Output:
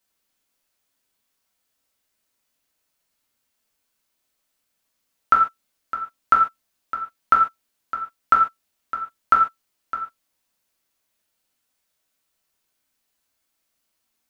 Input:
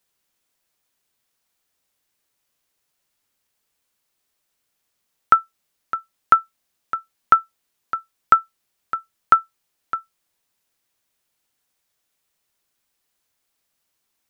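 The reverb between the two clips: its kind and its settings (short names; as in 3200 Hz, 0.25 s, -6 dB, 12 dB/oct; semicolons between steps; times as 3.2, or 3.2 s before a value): non-linear reverb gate 0.17 s falling, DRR -1 dB; gain -4 dB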